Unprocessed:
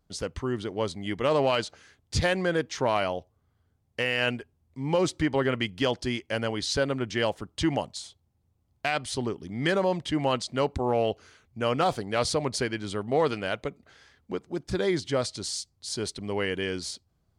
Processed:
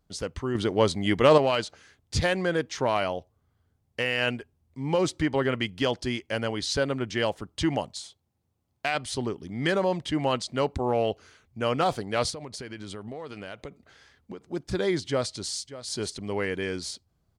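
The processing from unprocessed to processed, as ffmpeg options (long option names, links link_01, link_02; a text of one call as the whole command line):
ffmpeg -i in.wav -filter_complex "[0:a]asettb=1/sr,asplit=3[link_01][link_02][link_03];[link_01]atrim=end=0.554[link_04];[link_02]atrim=start=0.55:end=1.38,asetpts=PTS-STARTPTS,afade=type=in:duration=0.004:curve=qsin,afade=type=out:start_time=0.826:duration=0.004:curve=qsin,acontrast=88[link_05];[link_03]atrim=start=1.376[link_06];[link_04][link_05]acrossfade=duration=0.004:curve1=hsin:curve2=qsin[link_07];[link_07][link_06]acrossfade=duration=0.004:curve1=qsin:curve2=hsin,asettb=1/sr,asplit=3[link_08][link_09][link_10];[link_08]atrim=end=8.004[link_11];[link_09]atrim=start=8:end=8.95,asetpts=PTS-STARTPTS,afade=type=in:duration=0.004:curve=qsin,afade=type=out:start_time=0.946:duration=0.004:curve=qsin,highpass=frequency=170:poles=1[link_12];[link_10]atrim=start=8.946[link_13];[link_11][link_12]acrossfade=duration=0.004:curve1=hsin:curve2=qsin[link_14];[link_14][link_13]acrossfade=duration=0.004:curve1=qsin:curve2=hsin,asettb=1/sr,asplit=3[link_15][link_16][link_17];[link_15]atrim=end=12.304[link_18];[link_16]atrim=start=12.3:end=14.52,asetpts=PTS-STARTPTS,afade=type=in:duration=0.004:curve=qsin,afade=type=out:start_time=2.216:duration=0.004:curve=qsin,acompressor=threshold=-34dB:ratio=12:attack=3.2:release=140:knee=1:detection=peak[link_19];[link_17]atrim=start=14.516[link_20];[link_18][link_19]acrossfade=duration=0.004:curve1=hsin:curve2=qsin[link_21];[link_21][link_20]acrossfade=duration=0.004:curve1=qsin:curve2=hsin,asplit=2[link_22][link_23];[link_23]afade=type=in:start_time=15.08:duration=0.01,afade=type=out:start_time=15.58:duration=0.01,aecho=0:1:590|1180:0.177828|0.0266742[link_24];[link_22][link_24]amix=inputs=2:normalize=0,asettb=1/sr,asplit=3[link_25][link_26][link_27];[link_25]atrim=end=16.374[link_28];[link_26]atrim=start=16.37:end=16.79,asetpts=PTS-STARTPTS,afade=type=in:duration=0.004:curve=qsin,afade=type=out:start_time=0.416:duration=0.004:curve=qsin,bandreject=frequency=2900:width=6.2[link_29];[link_27]atrim=start=16.786[link_30];[link_28][link_29]acrossfade=duration=0.004:curve1=hsin:curve2=qsin[link_31];[link_31][link_30]acrossfade=duration=0.004:curve1=qsin:curve2=hsin" out.wav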